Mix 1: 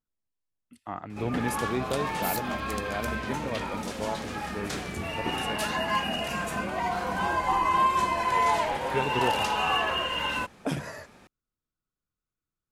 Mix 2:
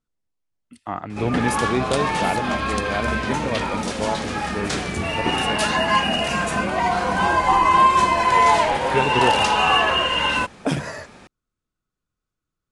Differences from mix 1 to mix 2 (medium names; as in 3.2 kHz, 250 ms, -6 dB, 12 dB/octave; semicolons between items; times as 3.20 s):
speech +8.5 dB; first sound +9.5 dB; master: add elliptic low-pass 10 kHz, stop band 60 dB